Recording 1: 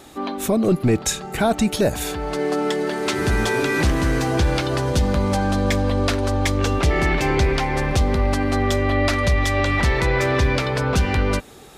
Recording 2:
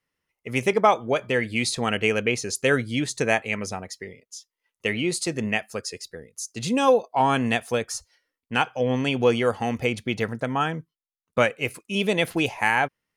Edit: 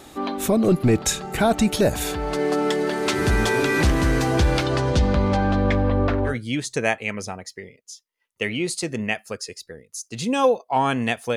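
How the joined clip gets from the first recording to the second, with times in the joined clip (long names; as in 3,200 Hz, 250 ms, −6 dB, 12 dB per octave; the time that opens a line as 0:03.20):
recording 1
0:04.63–0:06.36: low-pass filter 8,600 Hz → 1,200 Hz
0:06.30: continue with recording 2 from 0:02.74, crossfade 0.12 s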